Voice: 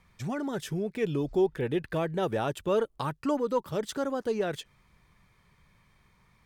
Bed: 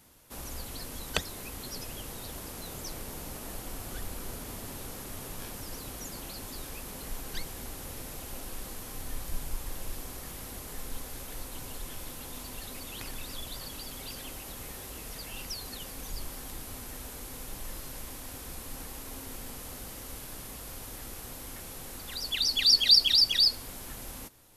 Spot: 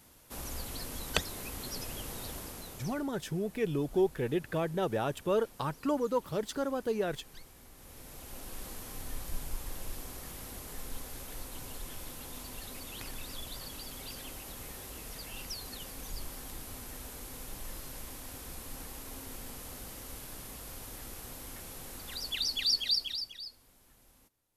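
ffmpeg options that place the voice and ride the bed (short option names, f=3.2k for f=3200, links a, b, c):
-filter_complex "[0:a]adelay=2600,volume=-2.5dB[a];[1:a]volume=12dB,afade=t=out:st=2.27:d=0.8:silence=0.188365,afade=t=in:st=7.73:d=0.92:silence=0.251189,afade=t=out:st=22.13:d=1.22:silence=0.11885[b];[a][b]amix=inputs=2:normalize=0"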